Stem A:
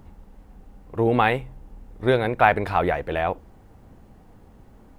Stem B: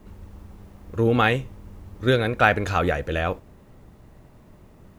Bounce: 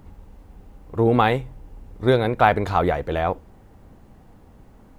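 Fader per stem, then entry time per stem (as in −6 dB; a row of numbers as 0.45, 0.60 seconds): +0.5, −9.0 decibels; 0.00, 0.00 seconds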